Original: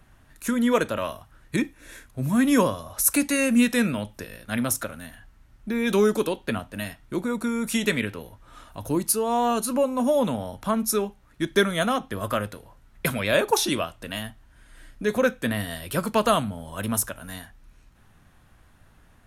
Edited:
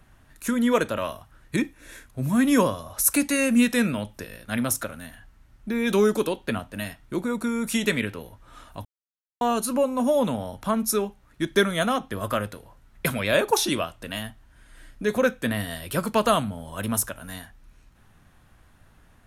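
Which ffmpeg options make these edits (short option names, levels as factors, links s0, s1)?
-filter_complex "[0:a]asplit=3[s0][s1][s2];[s0]atrim=end=8.85,asetpts=PTS-STARTPTS,afade=t=out:st=8.846:d=0.004:c=hsin[s3];[s1]atrim=start=8.85:end=9.41,asetpts=PTS-STARTPTS,volume=0[s4];[s2]atrim=start=9.41,asetpts=PTS-STARTPTS,afade=t=in:d=0.004:c=hsin[s5];[s3][s4][s5]concat=n=3:v=0:a=1"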